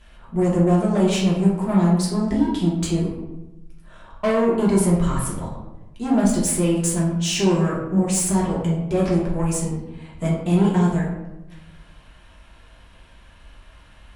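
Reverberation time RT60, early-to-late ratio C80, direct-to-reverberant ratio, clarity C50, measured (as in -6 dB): 1.0 s, 6.0 dB, -6.5 dB, 2.5 dB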